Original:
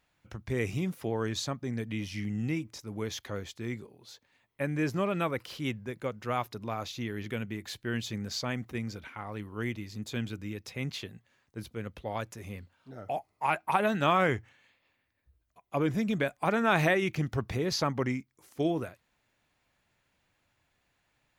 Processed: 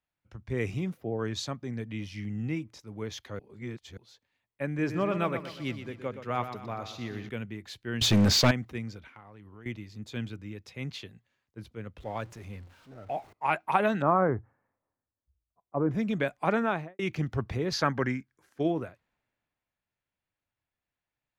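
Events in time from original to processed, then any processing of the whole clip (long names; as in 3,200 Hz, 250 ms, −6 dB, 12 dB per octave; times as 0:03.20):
0:00.97–0:01.19: gain on a spectral selection 810–12,000 Hz −12 dB
0:03.39–0:03.97: reverse
0:04.66–0:07.29: repeating echo 122 ms, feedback 53%, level −9 dB
0:08.01–0:08.51: leveller curve on the samples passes 5
0:09.03–0:09.66: downward compressor, threshold −39 dBFS
0:11.98–0:13.33: converter with a step at zero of −46 dBFS
0:14.02–0:15.91: low-pass filter 1,300 Hz 24 dB per octave
0:16.52–0:16.99: fade out and dull
0:17.73–0:18.60: parametric band 1,600 Hz +12.5 dB 0.33 octaves
whole clip: high-shelf EQ 6,600 Hz −11.5 dB; multiband upward and downward expander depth 40%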